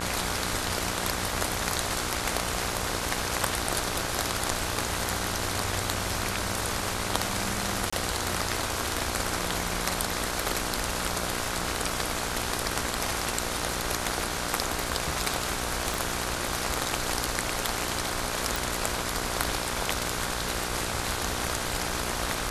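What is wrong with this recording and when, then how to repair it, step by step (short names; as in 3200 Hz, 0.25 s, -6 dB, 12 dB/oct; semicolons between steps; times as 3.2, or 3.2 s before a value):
buzz 60 Hz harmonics 27 -35 dBFS
7.9–7.92 gap 25 ms
15.94 pop
18.56 pop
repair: de-click; de-hum 60 Hz, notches 27; interpolate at 7.9, 25 ms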